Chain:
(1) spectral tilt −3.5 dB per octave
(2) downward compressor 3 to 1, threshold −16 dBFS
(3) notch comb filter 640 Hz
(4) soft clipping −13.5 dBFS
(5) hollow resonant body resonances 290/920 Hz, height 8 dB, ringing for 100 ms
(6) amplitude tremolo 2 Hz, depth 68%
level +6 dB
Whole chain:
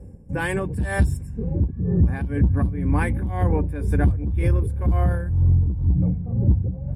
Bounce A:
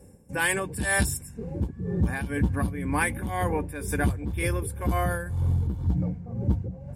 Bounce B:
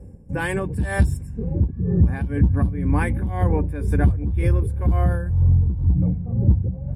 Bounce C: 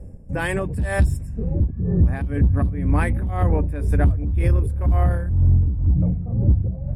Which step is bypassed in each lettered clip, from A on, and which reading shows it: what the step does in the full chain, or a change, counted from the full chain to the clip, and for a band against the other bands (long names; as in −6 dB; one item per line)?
1, 125 Hz band −7.5 dB
4, distortion level −22 dB
3, change in integrated loudness +1.5 LU